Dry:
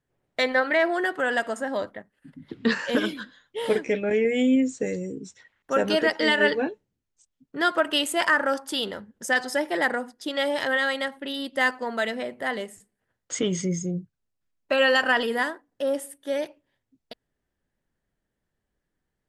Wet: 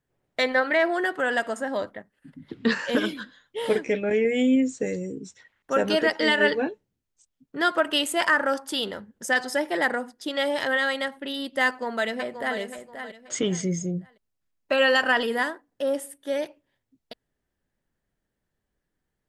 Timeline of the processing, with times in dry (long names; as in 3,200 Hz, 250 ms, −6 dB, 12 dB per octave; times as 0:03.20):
0:11.66–0:12.58: delay throw 530 ms, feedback 30%, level −9 dB